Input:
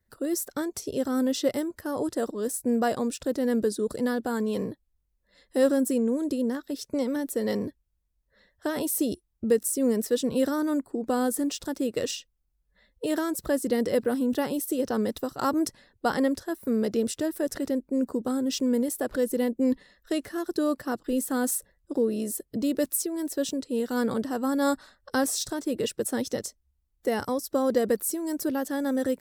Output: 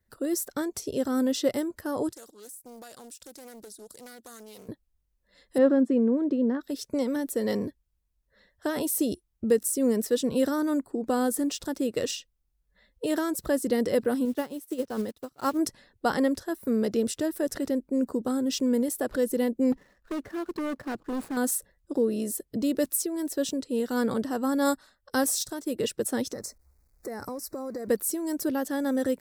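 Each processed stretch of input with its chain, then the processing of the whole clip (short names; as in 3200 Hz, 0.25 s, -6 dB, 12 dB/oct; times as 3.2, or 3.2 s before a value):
2.12–4.69 pre-emphasis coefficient 0.9 + compressor 12:1, threshold -40 dBFS + Doppler distortion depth 0.39 ms
5.58–6.61 LPF 2100 Hz + resonant low shelf 150 Hz -11 dB, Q 1.5
14.25–15.59 block floating point 5-bit + upward expander 2.5:1, over -37 dBFS
19.72–21.37 median filter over 15 samples + hard clip -28 dBFS
24.65–25.79 high shelf 8400 Hz +8 dB + upward expander, over -35 dBFS
26.33–27.88 G.711 law mismatch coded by mu + compressor, threshold -32 dBFS + Butterworth band-stop 3100 Hz, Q 1.5
whole clip: dry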